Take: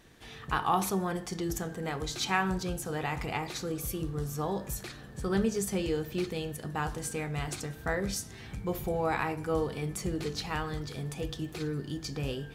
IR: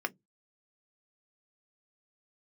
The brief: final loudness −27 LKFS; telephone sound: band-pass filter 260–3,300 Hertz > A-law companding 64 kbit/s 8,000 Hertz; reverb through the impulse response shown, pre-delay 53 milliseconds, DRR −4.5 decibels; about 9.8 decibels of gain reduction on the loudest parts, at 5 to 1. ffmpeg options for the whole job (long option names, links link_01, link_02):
-filter_complex "[0:a]acompressor=threshold=-34dB:ratio=5,asplit=2[link_01][link_02];[1:a]atrim=start_sample=2205,adelay=53[link_03];[link_02][link_03]afir=irnorm=-1:irlink=0,volume=-1dB[link_04];[link_01][link_04]amix=inputs=2:normalize=0,highpass=260,lowpass=3300,volume=9dB" -ar 8000 -c:a pcm_alaw